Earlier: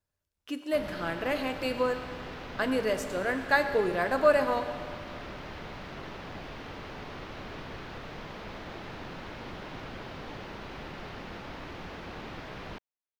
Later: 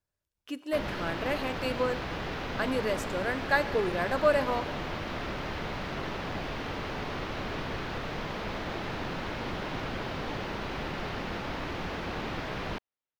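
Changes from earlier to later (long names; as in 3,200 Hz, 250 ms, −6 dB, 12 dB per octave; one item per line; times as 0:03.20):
speech: send −7.5 dB
background +6.5 dB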